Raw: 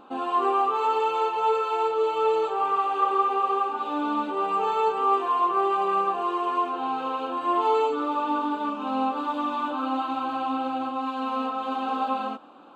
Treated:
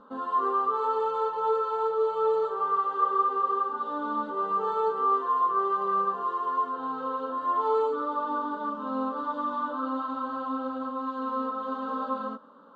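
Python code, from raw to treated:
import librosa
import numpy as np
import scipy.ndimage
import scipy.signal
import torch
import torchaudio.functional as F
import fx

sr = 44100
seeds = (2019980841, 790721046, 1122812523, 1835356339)

y = fx.air_absorb(x, sr, metres=150.0)
y = fx.fixed_phaser(y, sr, hz=500.0, stages=8)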